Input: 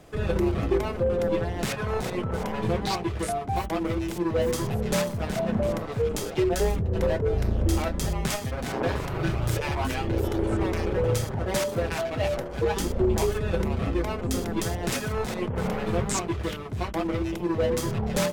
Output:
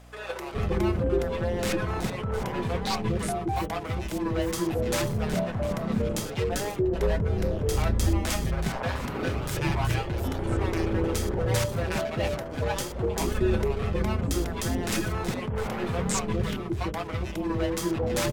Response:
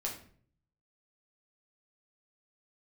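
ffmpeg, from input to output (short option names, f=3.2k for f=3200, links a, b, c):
-filter_complex "[0:a]acrossover=split=520[a][b];[a]adelay=410[c];[c][b]amix=inputs=2:normalize=0,aeval=exprs='val(0)+0.00355*(sin(2*PI*60*n/s)+sin(2*PI*2*60*n/s)/2+sin(2*PI*3*60*n/s)/3+sin(2*PI*4*60*n/s)/4+sin(2*PI*5*60*n/s)/5)':c=same"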